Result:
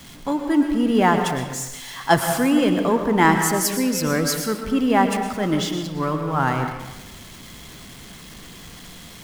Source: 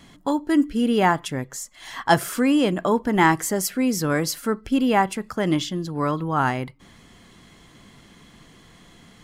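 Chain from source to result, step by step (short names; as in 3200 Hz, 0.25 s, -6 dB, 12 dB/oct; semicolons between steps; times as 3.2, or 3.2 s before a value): zero-crossing step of -31.5 dBFS; reverb RT60 1.3 s, pre-delay 0.106 s, DRR 4.5 dB; three-band expander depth 40%; gain -1 dB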